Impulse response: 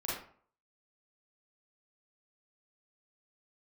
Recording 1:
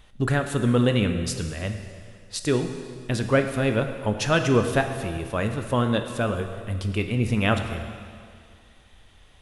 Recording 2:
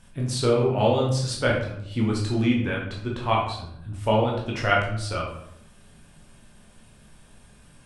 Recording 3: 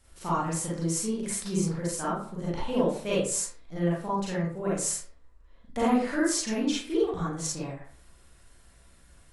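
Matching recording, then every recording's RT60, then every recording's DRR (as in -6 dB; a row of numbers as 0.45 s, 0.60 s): 3; 2.2 s, 0.75 s, 0.50 s; 6.0 dB, -3.0 dB, -7.5 dB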